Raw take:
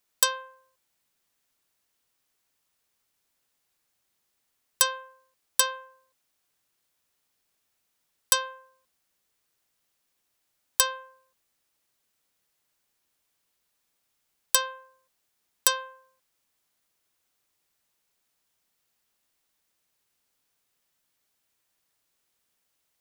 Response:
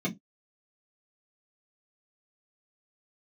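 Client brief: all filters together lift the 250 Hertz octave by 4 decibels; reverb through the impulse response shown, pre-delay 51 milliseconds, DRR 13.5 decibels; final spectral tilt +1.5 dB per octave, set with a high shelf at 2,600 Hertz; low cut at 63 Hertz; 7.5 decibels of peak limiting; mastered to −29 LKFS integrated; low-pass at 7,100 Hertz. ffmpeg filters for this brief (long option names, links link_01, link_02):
-filter_complex "[0:a]highpass=63,lowpass=7100,equalizer=frequency=250:width_type=o:gain=5.5,highshelf=frequency=2600:gain=-6.5,alimiter=limit=-19.5dB:level=0:latency=1,asplit=2[link_01][link_02];[1:a]atrim=start_sample=2205,adelay=51[link_03];[link_02][link_03]afir=irnorm=-1:irlink=0,volume=-19.5dB[link_04];[link_01][link_04]amix=inputs=2:normalize=0,volume=7dB"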